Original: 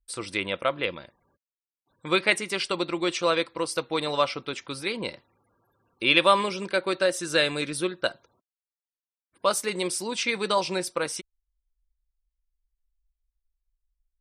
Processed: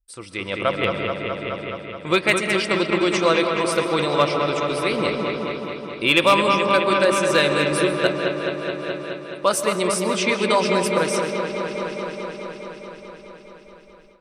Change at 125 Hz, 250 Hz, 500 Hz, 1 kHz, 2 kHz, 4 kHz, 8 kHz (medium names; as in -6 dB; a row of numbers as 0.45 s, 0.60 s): +10.5 dB, +9.0 dB, +8.0 dB, +7.0 dB, +6.0 dB, +3.5 dB, +4.0 dB